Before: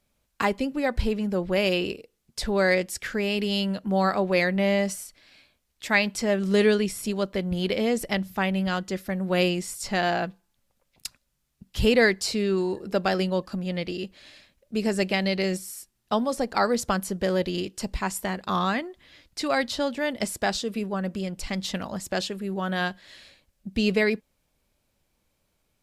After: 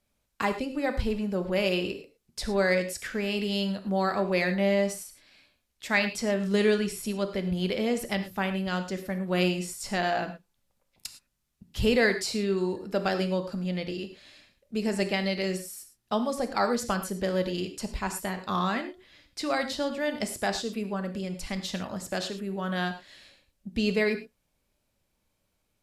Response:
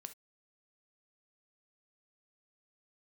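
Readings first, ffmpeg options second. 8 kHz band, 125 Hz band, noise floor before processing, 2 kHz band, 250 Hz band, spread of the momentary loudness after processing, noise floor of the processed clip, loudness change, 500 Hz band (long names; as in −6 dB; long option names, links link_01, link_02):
−3.0 dB, −2.5 dB, −74 dBFS, −3.0 dB, −2.5 dB, 11 LU, −76 dBFS, −3.0 dB, −3.0 dB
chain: -filter_complex "[1:a]atrim=start_sample=2205,asetrate=28224,aresample=44100[link_01];[0:a][link_01]afir=irnorm=-1:irlink=0"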